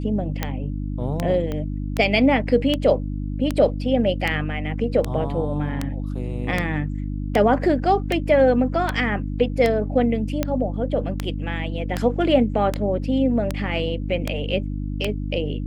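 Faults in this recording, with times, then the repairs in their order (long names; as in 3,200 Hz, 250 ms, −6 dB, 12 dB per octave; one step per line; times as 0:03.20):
mains hum 50 Hz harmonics 6 −27 dBFS
scratch tick 78 rpm −8 dBFS
0:01.52: click −16 dBFS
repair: click removal
hum removal 50 Hz, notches 6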